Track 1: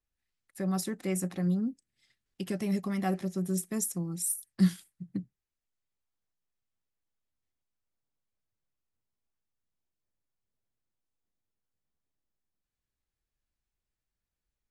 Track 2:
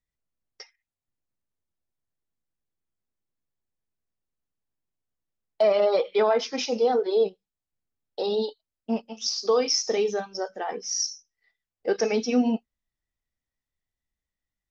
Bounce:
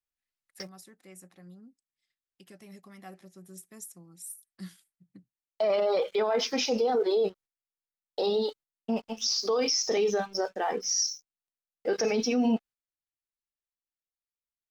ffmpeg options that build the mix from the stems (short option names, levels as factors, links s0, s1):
-filter_complex "[0:a]lowshelf=f=390:g=-10,dynaudnorm=f=770:g=7:m=1.58,volume=0.596[s0];[1:a]aeval=exprs='sgn(val(0))*max(abs(val(0))-0.00141,0)':c=same,volume=1.41,asplit=2[s1][s2];[s2]apad=whole_len=648618[s3];[s0][s3]sidechaingate=range=0.316:threshold=0.00562:ratio=16:detection=peak[s4];[s4][s1]amix=inputs=2:normalize=0,alimiter=limit=0.112:level=0:latency=1:release=13"